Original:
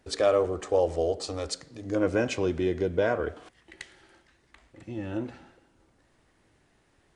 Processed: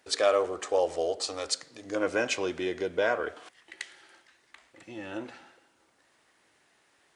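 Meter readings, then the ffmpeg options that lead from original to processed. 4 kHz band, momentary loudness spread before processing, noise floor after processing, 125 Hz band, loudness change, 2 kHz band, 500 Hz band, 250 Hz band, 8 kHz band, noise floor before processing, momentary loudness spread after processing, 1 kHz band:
+4.5 dB, 16 LU, −68 dBFS, −14.5 dB, −1.5 dB, +3.5 dB, −2.0 dB, −6.0 dB, +4.5 dB, −67 dBFS, 17 LU, +1.0 dB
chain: -af "highpass=frequency=980:poles=1,volume=4.5dB"

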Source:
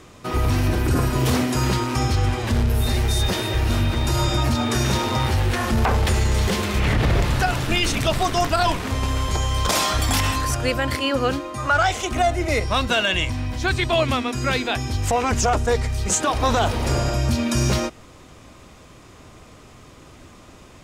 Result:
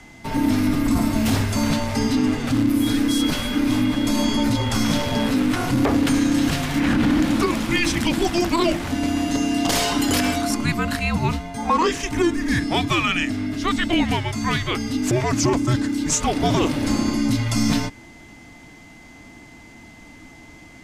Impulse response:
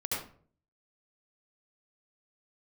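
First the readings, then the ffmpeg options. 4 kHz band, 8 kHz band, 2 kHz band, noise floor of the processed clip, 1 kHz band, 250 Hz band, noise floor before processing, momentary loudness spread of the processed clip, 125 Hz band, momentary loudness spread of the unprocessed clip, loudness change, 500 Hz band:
−1.0 dB, −0.5 dB, −1.0 dB, −45 dBFS, −2.5 dB, +7.0 dB, −46 dBFS, 4 LU, −4.0 dB, 3 LU, +0.5 dB, −2.0 dB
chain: -af "aeval=exprs='val(0)+0.00447*sin(2*PI*2400*n/s)':channel_layout=same,afreqshift=-350"

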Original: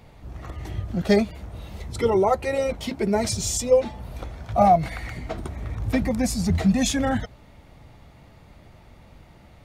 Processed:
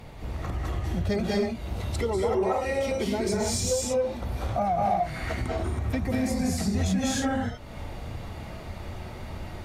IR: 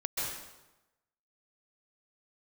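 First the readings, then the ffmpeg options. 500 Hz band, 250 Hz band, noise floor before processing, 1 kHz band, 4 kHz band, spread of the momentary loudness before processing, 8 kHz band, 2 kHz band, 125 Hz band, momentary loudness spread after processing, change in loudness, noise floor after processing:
−4.0 dB, −3.5 dB, −50 dBFS, −4.5 dB, −2.5 dB, 17 LU, −2.5 dB, −2.0 dB, −1.0 dB, 14 LU, −4.5 dB, −40 dBFS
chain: -filter_complex "[1:a]atrim=start_sample=2205,afade=type=out:start_time=0.27:duration=0.01,atrim=end_sample=12348,asetrate=29988,aresample=44100[link_01];[0:a][link_01]afir=irnorm=-1:irlink=0,asplit=2[link_02][link_03];[link_03]asoftclip=type=tanh:threshold=-11dB,volume=-4dB[link_04];[link_02][link_04]amix=inputs=2:normalize=0,acompressor=threshold=-29dB:ratio=3"

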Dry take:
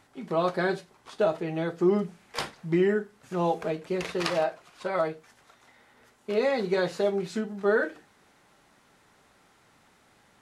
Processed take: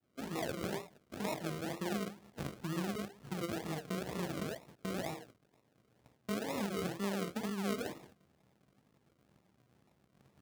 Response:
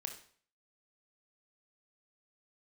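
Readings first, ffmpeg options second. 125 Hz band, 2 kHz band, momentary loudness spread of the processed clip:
−6.0 dB, −11.5 dB, 7 LU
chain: -filter_complex "[0:a]flanger=delay=19.5:depth=7.7:speed=0.9,asplit=2[link_01][link_02];[link_02]alimiter=level_in=1dB:limit=-24dB:level=0:latency=1,volume=-1dB,volume=2dB[link_03];[link_01][link_03]amix=inputs=2:normalize=0,acrossover=split=290[link_04][link_05];[link_05]adelay=40[link_06];[link_04][link_06]amix=inputs=2:normalize=0,asubboost=boost=6.5:cutoff=200,aresample=8000,aeval=exprs='max(val(0),0)':channel_layout=same,aresample=44100,asplit=2[link_07][link_08];[link_08]adelay=15,volume=-6.5dB[link_09];[link_07][link_09]amix=inputs=2:normalize=0,agate=range=-13dB:threshold=-49dB:ratio=16:detection=peak,acrusher=samples=40:mix=1:aa=0.000001:lfo=1:lforange=24:lforate=2.1,acompressor=threshold=-37dB:ratio=3,highpass=110,volume=2dB"

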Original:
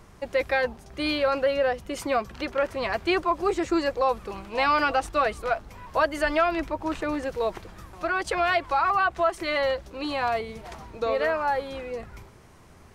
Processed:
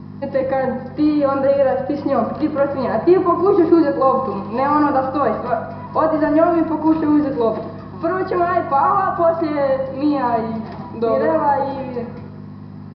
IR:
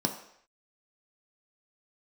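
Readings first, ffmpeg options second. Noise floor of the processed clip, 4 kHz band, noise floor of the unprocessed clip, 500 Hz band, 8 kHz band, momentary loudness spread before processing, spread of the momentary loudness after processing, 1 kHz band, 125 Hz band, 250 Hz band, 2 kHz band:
−34 dBFS, can't be measured, −51 dBFS, +9.0 dB, below −20 dB, 9 LU, 11 LU, +7.5 dB, +13.0 dB, +14.5 dB, −2.5 dB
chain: -filter_complex "[0:a]acrossover=split=1500[link_01][link_02];[link_02]acompressor=threshold=-43dB:ratio=6[link_03];[link_01][link_03]amix=inputs=2:normalize=0,aeval=exprs='val(0)+0.0141*(sin(2*PI*50*n/s)+sin(2*PI*2*50*n/s)/2+sin(2*PI*3*50*n/s)/3+sin(2*PI*4*50*n/s)/4+sin(2*PI*5*50*n/s)/5)':channel_layout=same,aecho=1:1:91|182|273|364|455|546:0.237|0.133|0.0744|0.0416|0.0233|0.0131[link_04];[1:a]atrim=start_sample=2205,asetrate=48510,aresample=44100[link_05];[link_04][link_05]afir=irnorm=-1:irlink=0,aresample=11025,aresample=44100,volume=-1dB"

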